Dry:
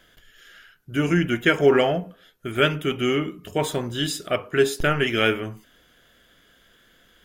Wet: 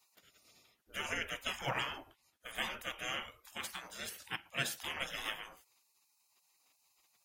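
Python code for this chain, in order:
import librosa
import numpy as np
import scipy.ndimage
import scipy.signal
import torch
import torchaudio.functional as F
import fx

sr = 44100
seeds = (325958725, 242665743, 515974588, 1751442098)

y = fx.highpass(x, sr, hz=130.0, slope=6, at=(3.38, 4.83))
y = fx.spec_gate(y, sr, threshold_db=-20, keep='weak')
y = y * librosa.db_to_amplitude(-4.0)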